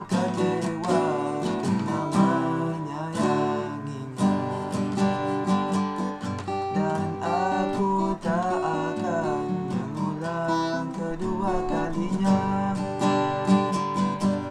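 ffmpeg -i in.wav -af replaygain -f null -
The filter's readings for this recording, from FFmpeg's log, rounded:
track_gain = +6.9 dB
track_peak = 0.261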